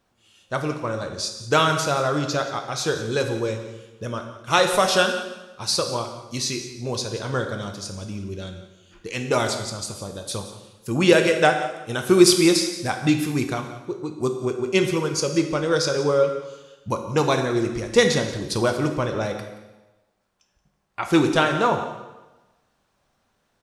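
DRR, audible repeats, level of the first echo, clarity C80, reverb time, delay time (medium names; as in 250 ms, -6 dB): 4.5 dB, 1, -16.0 dB, 8.5 dB, 1.1 s, 177 ms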